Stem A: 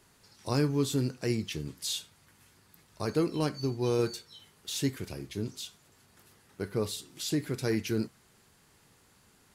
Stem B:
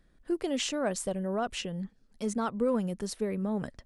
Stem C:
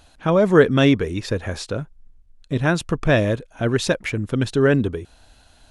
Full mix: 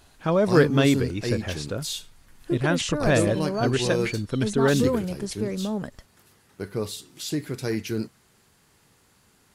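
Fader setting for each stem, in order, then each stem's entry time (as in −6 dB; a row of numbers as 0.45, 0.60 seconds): +2.0, +3.0, −4.5 decibels; 0.00, 2.20, 0.00 seconds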